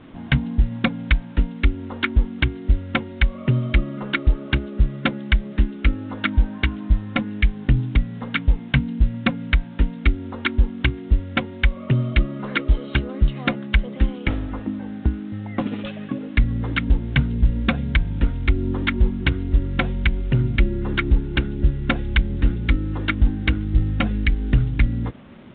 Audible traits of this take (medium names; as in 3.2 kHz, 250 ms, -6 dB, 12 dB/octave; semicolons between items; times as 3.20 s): a quantiser's noise floor 8-bit, dither none; µ-law